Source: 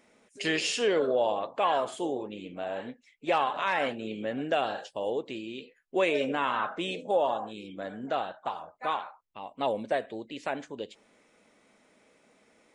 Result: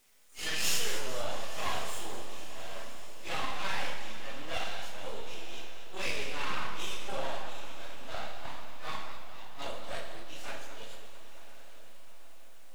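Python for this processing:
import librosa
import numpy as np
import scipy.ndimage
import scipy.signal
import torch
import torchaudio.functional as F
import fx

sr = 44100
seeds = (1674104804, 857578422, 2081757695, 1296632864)

p1 = fx.phase_scramble(x, sr, seeds[0], window_ms=100)
p2 = fx.tilt_eq(p1, sr, slope=4.5)
p3 = fx.quant_dither(p2, sr, seeds[1], bits=10, dither='triangular')
p4 = np.maximum(p3, 0.0)
p5 = p4 + fx.echo_diffused(p4, sr, ms=1007, feedback_pct=50, wet_db=-13.5, dry=0)
p6 = fx.rev_schroeder(p5, sr, rt60_s=1.0, comb_ms=28, drr_db=4.0)
p7 = fx.echo_warbled(p6, sr, ms=222, feedback_pct=60, rate_hz=2.8, cents=120, wet_db=-12.0)
y = p7 * librosa.db_to_amplitude(-6.0)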